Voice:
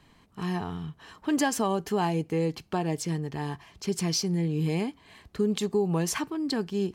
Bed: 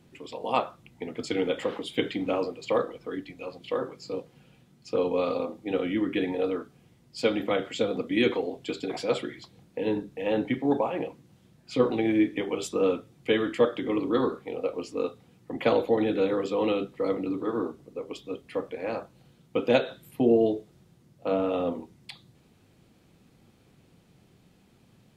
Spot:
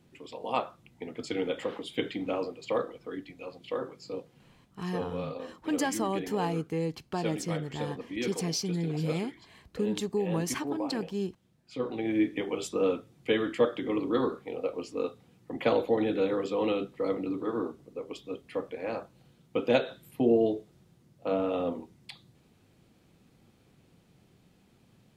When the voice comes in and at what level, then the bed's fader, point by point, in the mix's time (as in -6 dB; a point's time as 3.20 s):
4.40 s, -4.0 dB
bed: 4.54 s -4 dB
4.79 s -10 dB
11.81 s -10 dB
12.25 s -2.5 dB